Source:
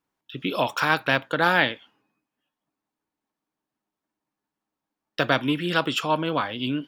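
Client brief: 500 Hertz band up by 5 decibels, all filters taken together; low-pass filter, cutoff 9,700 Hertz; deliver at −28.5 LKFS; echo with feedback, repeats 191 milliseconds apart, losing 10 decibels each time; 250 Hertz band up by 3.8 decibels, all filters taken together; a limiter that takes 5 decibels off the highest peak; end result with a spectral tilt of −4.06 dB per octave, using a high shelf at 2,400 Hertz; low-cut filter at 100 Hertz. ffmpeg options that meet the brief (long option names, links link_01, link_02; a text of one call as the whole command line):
ffmpeg -i in.wav -af "highpass=100,lowpass=9700,equalizer=frequency=250:width_type=o:gain=3,equalizer=frequency=500:width_type=o:gain=6,highshelf=frequency=2400:gain=-8,alimiter=limit=-10.5dB:level=0:latency=1,aecho=1:1:191|382|573|764:0.316|0.101|0.0324|0.0104,volume=-5dB" out.wav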